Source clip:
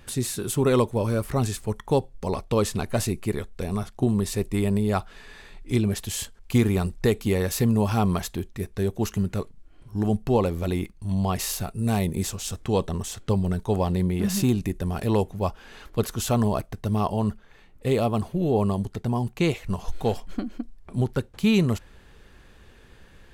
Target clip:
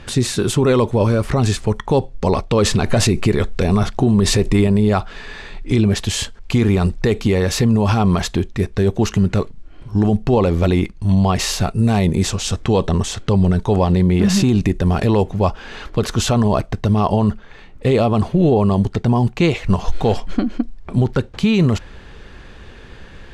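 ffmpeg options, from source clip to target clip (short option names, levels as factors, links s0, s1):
-filter_complex "[0:a]lowpass=5800,asettb=1/sr,asplit=3[s0][s1][s2];[s0]atrim=end=2.584[s3];[s1]atrim=start=2.58:end=4.67,asetpts=PTS-STARTPTS,afade=t=in:d=0.004:c=qsin,afade=t=out:st=2.086:d=0.004:c=qsin,acontrast=69[s4];[s2]atrim=start=4.666[s5];[s3][s4]acrossfade=d=0.004:c1=hsin:c2=qsin[s6];[s6][s5]acrossfade=d=0.004:c1=qsin:c2=hsin,alimiter=level_in=7.5:limit=0.891:release=50:level=0:latency=1,volume=0.562"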